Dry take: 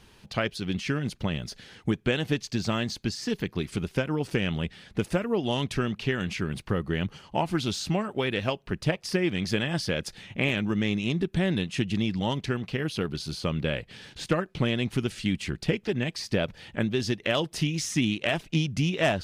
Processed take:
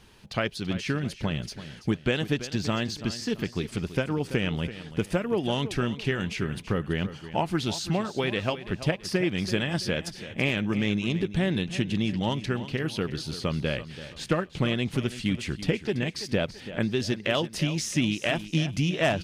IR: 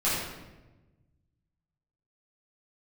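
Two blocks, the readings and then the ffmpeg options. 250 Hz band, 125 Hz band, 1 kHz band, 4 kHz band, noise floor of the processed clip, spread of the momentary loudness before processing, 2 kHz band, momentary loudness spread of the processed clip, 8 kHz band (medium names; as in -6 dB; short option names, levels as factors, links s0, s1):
0.0 dB, 0.0 dB, 0.0 dB, 0.0 dB, -47 dBFS, 5 LU, 0.0 dB, 5 LU, 0.0 dB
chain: -af "aecho=1:1:333|666|999|1332:0.211|0.0803|0.0305|0.0116"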